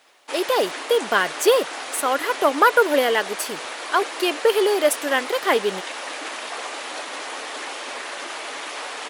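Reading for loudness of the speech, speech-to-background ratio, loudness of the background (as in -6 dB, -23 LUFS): -21.0 LUFS, 9.5 dB, -30.5 LUFS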